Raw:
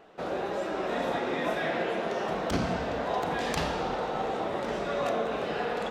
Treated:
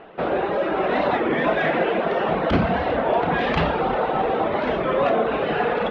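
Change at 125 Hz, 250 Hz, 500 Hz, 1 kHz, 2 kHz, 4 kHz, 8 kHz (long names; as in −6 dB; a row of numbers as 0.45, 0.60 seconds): +9.5 dB, +9.0 dB, +9.0 dB, +9.0 dB, +9.0 dB, +4.5 dB, below −10 dB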